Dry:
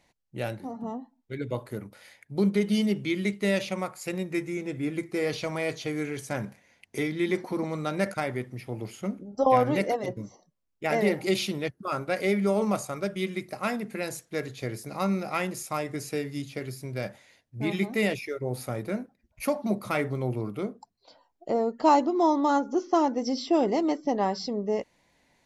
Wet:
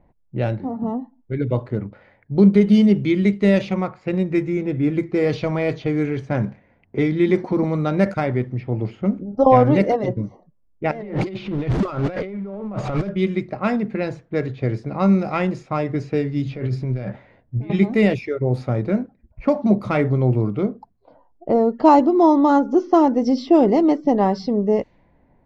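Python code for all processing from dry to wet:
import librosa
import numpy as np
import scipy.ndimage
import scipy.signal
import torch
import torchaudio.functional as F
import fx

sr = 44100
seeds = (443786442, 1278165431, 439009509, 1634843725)

y = fx.chain(x, sr, fx.high_shelf(hz=9200.0, db=-10.5),
    fx.notch(hz=580.0, q=11.0), at=(3.61, 4.03))
y = fx.chain(y, sr, fx.zero_step(step_db=-34.0),
    fx.over_compress(threshold_db=-36.0, ratio=-1.0), at=(10.91, 13.09))
y = fx.chain(y, sr, fx.over_compress(threshold_db=-38.0, ratio=-1.0),
    fx.doubler(ms=16.0, db=-11), at=(16.45, 17.7))
y = fx.tilt_eq(y, sr, slope=-2.5)
y = fx.env_lowpass(y, sr, base_hz=1100.0, full_db=-20.0)
y = scipy.signal.sosfilt(scipy.signal.butter(2, 6300.0, 'lowpass', fs=sr, output='sos'), y)
y = y * 10.0 ** (6.0 / 20.0)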